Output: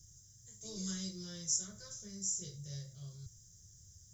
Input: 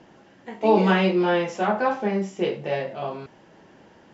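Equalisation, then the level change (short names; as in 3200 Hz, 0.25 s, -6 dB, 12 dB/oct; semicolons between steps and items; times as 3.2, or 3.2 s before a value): elliptic band-stop 100–6200 Hz, stop band 40 dB; high shelf 4400 Hz +11.5 dB; notch 4400 Hz, Q 6.1; +7.5 dB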